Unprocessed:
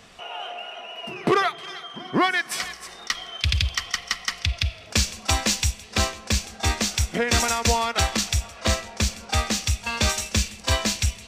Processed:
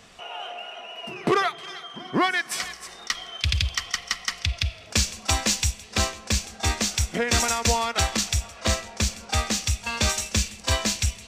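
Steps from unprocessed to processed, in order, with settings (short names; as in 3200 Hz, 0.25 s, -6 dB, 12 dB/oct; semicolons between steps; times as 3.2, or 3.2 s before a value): bell 7200 Hz +2.5 dB; gain -1.5 dB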